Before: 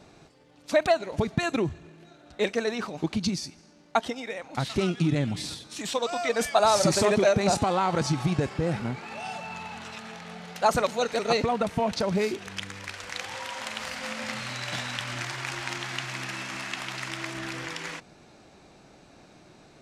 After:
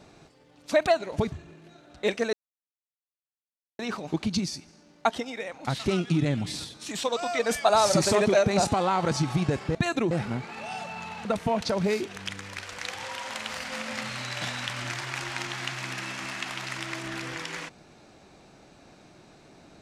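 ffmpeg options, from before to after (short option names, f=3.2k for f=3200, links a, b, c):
-filter_complex "[0:a]asplit=6[a][b][c][d][e][f];[a]atrim=end=1.322[g];[b]atrim=start=1.678:end=2.69,asetpts=PTS-STARTPTS,afade=t=out:st=1.008:d=0.004:c=hsin,apad=pad_dur=1.46[h];[c]atrim=start=2.69:end=8.652,asetpts=PTS-STARTPTS,afade=t=in:d=0.004:c=hsin[i];[d]atrim=start=1.318:end=1.682[j];[e]atrim=start=8.648:end=9.792[k];[f]atrim=start=11.558[l];[h][i]concat=n=2:v=0:a=1[m];[g][m]acrossfade=d=0.004:c1=hsin:c2=hsin[n];[n][j]acrossfade=d=0.004:c1=hsin:c2=hsin[o];[o][k]acrossfade=d=0.004:c1=hsin:c2=hsin[p];[p][l]acrossfade=d=0.004:c1=hsin:c2=hsin"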